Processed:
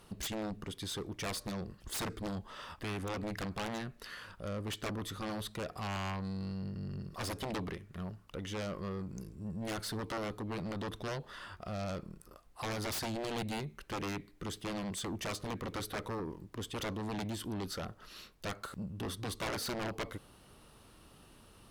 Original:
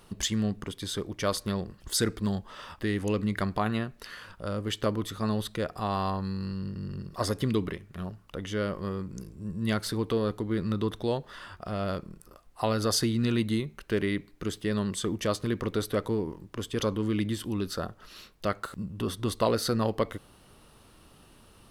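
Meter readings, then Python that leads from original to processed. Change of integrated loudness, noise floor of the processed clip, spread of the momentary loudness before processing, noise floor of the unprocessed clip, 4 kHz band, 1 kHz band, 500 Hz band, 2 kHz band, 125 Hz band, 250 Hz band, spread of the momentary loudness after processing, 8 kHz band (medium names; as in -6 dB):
-9.0 dB, -60 dBFS, 11 LU, -57 dBFS, -6.5 dB, -7.0 dB, -10.5 dB, -4.5 dB, -9.0 dB, -10.0 dB, 9 LU, -7.5 dB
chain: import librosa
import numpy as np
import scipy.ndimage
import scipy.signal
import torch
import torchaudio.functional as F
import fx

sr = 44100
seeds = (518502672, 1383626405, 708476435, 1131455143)

y = fx.cheby_harmonics(x, sr, harmonics=(7,), levels_db=(-11,), full_scale_db=-10.5)
y = 10.0 ** (-28.0 / 20.0) * np.tanh(y / 10.0 ** (-28.0 / 20.0))
y = y * librosa.db_to_amplitude(-2.5)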